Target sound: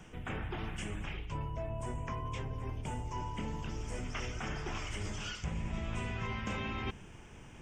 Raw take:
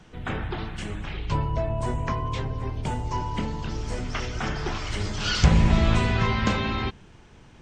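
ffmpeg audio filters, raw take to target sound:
-af "areverse,acompressor=threshold=0.02:ratio=6,areverse,aexciter=amount=1:drive=4.4:freq=2200,volume=0.841"

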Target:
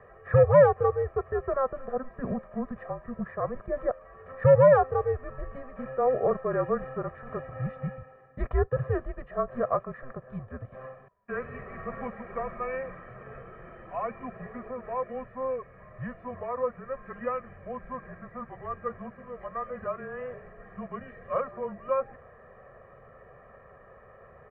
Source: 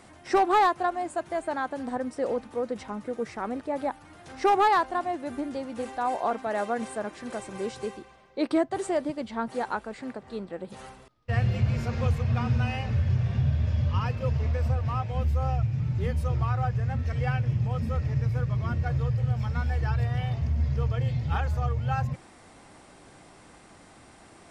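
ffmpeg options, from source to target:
-af "highpass=f=380:t=q:w=0.5412,highpass=f=380:t=q:w=1.307,lowpass=f=2100:t=q:w=0.5176,lowpass=f=2100:t=q:w=0.7071,lowpass=f=2100:t=q:w=1.932,afreqshift=-260,aecho=1:1:1.7:0.97"

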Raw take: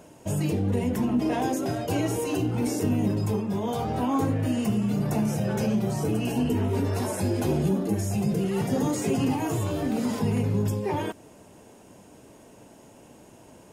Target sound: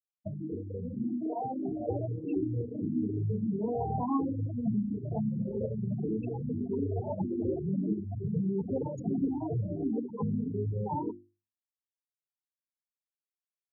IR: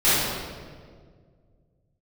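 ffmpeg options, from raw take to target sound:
-filter_complex "[0:a]acompressor=threshold=0.0282:ratio=5,asplit=2[s0][s1];[s1]adelay=1749,volume=0.158,highshelf=f=4000:g=-39.4[s2];[s0][s2]amix=inputs=2:normalize=0,afftfilt=real='re*gte(hypot(re,im),0.0631)':imag='im*gte(hypot(re,im),0.0631)':win_size=1024:overlap=0.75,dynaudnorm=f=240:g=13:m=1.78,bandreject=f=50:t=h:w=6,bandreject=f=100:t=h:w=6,bandreject=f=150:t=h:w=6,bandreject=f=200:t=h:w=6,bandreject=f=250:t=h:w=6,bandreject=f=300:t=h:w=6,bandreject=f=350:t=h:w=6,asplit=2[s3][s4];[s4]afreqshift=1.6[s5];[s3][s5]amix=inputs=2:normalize=1,volume=1.19"

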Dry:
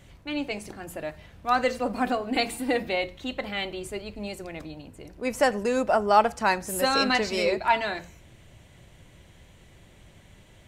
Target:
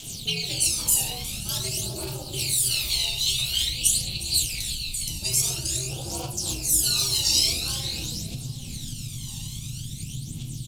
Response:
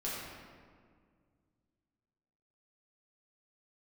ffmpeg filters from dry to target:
-filter_complex "[0:a]asubboost=boost=9:cutoff=130,asoftclip=type=tanh:threshold=0.0891,acrossover=split=690|7800[s0][s1][s2];[s0]acompressor=threshold=0.0251:ratio=4[s3];[s1]acompressor=threshold=0.00794:ratio=4[s4];[s2]acompressor=threshold=0.00316:ratio=4[s5];[s3][s4][s5]amix=inputs=3:normalize=0[s6];[1:a]atrim=start_sample=2205,afade=t=out:st=0.23:d=0.01,atrim=end_sample=10584[s7];[s6][s7]afir=irnorm=-1:irlink=0,aeval=exprs='val(0)*sin(2*PI*130*n/s)':c=same,asettb=1/sr,asplit=3[s8][s9][s10];[s8]atrim=end=2.544[s11];[s9]atrim=start=2.54:end=5.08,asetpts=PTS-STARTPTS,afade=t=in:d=0.004:c=qsin,afade=t=out:st=2.536:d=0.004:c=qsin,equalizer=f=300:w=0.38:g=-13[s12];[s10]atrim=start=5.076[s13];[s11][s12]acrossfade=d=0.004:c1=hsin:c2=qsin[s14];[s14][s13]acrossfade=d=0.004:c1=qsin:c2=hsin,aecho=1:1:795|1590|2385:0.141|0.0579|0.0237,aphaser=in_gain=1:out_gain=1:delay=1.1:decay=0.65:speed=0.48:type=triangular,acompressor=threshold=0.0251:ratio=5,asplit=5[s15][s16][s17][s18][s19];[s16]adelay=359,afreqshift=-79,volume=0.158[s20];[s17]adelay=718,afreqshift=-158,volume=0.0759[s21];[s18]adelay=1077,afreqshift=-237,volume=0.0363[s22];[s19]adelay=1436,afreqshift=-316,volume=0.0176[s23];[s15][s20][s21][s22][s23]amix=inputs=5:normalize=0,aexciter=amount=12.9:drive=9.6:freq=3000"

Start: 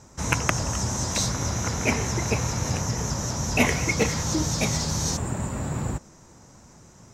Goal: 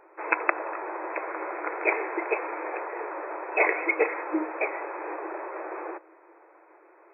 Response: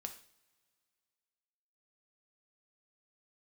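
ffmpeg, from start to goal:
-af "afftfilt=real='re*between(b*sr/4096,310,2600)':imag='im*between(b*sr/4096,310,2600)':win_size=4096:overlap=0.75,volume=1.19"

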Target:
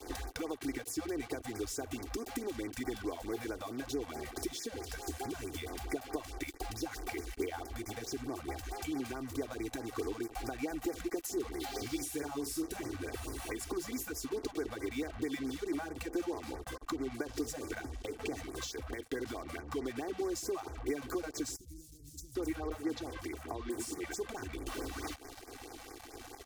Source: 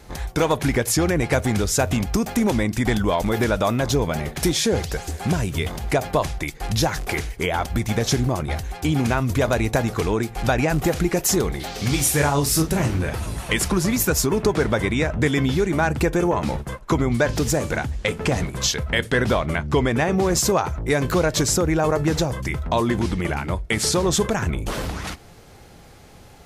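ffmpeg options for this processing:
-filter_complex "[0:a]acompressor=threshold=0.0251:ratio=16,acrusher=bits=6:mix=0:aa=0.5,lowshelf=f=220:t=q:w=3:g=-7,asettb=1/sr,asplit=3[s0][s1][s2];[s0]atrim=end=21.564[s3];[s1]atrim=start=21.56:end=24.14,asetpts=PTS-STARTPTS,afade=t=in:d=0.004:c=qsin,afade=t=out:st=2.576:d=0.004:c=qsin,acrossover=split=180|5500[s4][s5][s6];[s4]adelay=30[s7];[s5]adelay=790[s8];[s7][s8][s6]amix=inputs=3:normalize=0,atrim=end_sample=113778[s9];[s2]atrim=start=24.136[s10];[s3][s9]acrossfade=d=0.004:c1=hsin:c2=qsin[s11];[s11][s10]acrossfade=d=0.004:c1=qsin:c2=hsin,acrossover=split=440[s12][s13];[s13]acompressor=threshold=0.0112:ratio=2.5[s14];[s12][s14]amix=inputs=2:normalize=0,aecho=1:1:2.6:0.57,afftfilt=real='re*(1-between(b*sr/1024,320*pow(3500/320,0.5+0.5*sin(2*PI*4.6*pts/sr))/1.41,320*pow(3500/320,0.5+0.5*sin(2*PI*4.6*pts/sr))*1.41))':imag='im*(1-between(b*sr/1024,320*pow(3500/320,0.5+0.5*sin(2*PI*4.6*pts/sr))/1.41,320*pow(3500/320,0.5+0.5*sin(2*PI*4.6*pts/sr))*1.41))':win_size=1024:overlap=0.75,volume=0.75"

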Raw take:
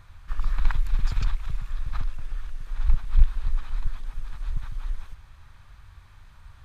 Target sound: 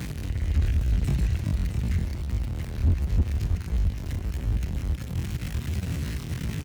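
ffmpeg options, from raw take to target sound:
-filter_complex "[0:a]aeval=exprs='val(0)+0.5*0.0531*sgn(val(0))':c=same,aecho=1:1:57|163|249|662:0.178|0.141|0.158|0.422,asetrate=74167,aresample=44100,atempo=0.594604,acrossover=split=460[s0][s1];[s0]highpass=f=61:w=0.5412,highpass=f=61:w=1.3066[s2];[s1]alimiter=level_in=1.41:limit=0.0631:level=0:latency=1:release=43,volume=0.708[s3];[s2][s3]amix=inputs=2:normalize=0,lowshelf=f=330:g=9,asoftclip=type=hard:threshold=0.237,volume=0.631"

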